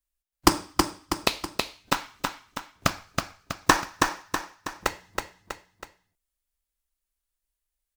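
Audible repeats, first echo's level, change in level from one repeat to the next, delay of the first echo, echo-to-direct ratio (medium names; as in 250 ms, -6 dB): 3, -4.0 dB, -6.0 dB, 323 ms, -3.0 dB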